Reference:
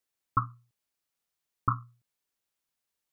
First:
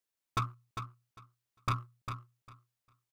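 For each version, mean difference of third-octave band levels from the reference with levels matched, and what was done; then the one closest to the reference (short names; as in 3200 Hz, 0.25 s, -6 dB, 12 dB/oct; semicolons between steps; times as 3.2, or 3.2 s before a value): 8.5 dB: sample leveller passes 1; overloaded stage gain 24.5 dB; on a send: feedback echo 0.401 s, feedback 17%, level -8 dB; on the sum: gain -2 dB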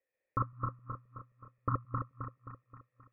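5.0 dB: regenerating reverse delay 0.132 s, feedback 70%, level -1 dB; vocal tract filter e; gain +15 dB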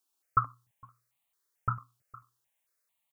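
3.0 dB: low shelf 250 Hz -8.5 dB; on a send: echo 0.46 s -23.5 dB; on the sum: step phaser 4.5 Hz 530–1500 Hz; gain +6.5 dB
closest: third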